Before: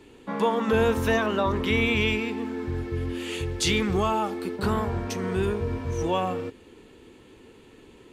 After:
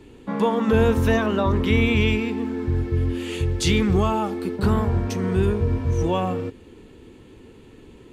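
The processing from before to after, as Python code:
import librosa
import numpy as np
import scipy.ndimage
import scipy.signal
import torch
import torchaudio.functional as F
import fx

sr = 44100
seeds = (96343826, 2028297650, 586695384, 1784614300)

y = fx.low_shelf(x, sr, hz=280.0, db=9.5)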